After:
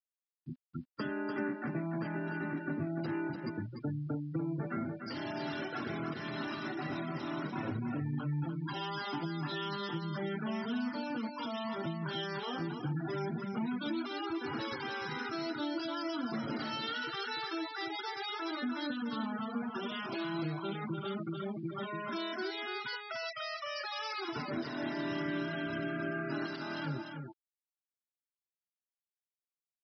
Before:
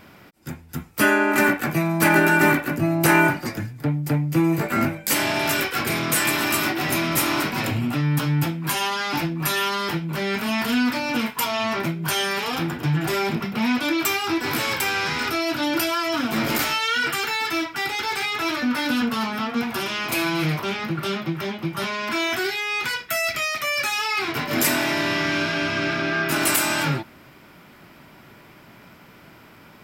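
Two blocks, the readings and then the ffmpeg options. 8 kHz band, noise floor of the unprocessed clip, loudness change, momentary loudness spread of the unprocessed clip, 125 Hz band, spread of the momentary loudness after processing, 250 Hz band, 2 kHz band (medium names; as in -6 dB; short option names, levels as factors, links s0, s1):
under -30 dB, -48 dBFS, -15.5 dB, 7 LU, -13.0 dB, 3 LU, -12.0 dB, -18.5 dB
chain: -filter_complex "[0:a]highpass=f=130:p=1,afftfilt=real='re*gte(hypot(re,im),0.0794)':imag='im*gte(hypot(re,im),0.0794)':win_size=1024:overlap=0.75,equalizer=f=2400:w=4.1:g=-13.5,acrossover=split=390|3000[s0][s1][s2];[s1]acompressor=threshold=0.0224:ratio=3[s3];[s0][s3][s2]amix=inputs=3:normalize=0,alimiter=limit=0.237:level=0:latency=1:release=371,acompressor=threshold=0.0562:ratio=16,acrusher=bits=10:mix=0:aa=0.000001,aecho=1:1:295:0.473,aresample=11025,aresample=44100,volume=0.422"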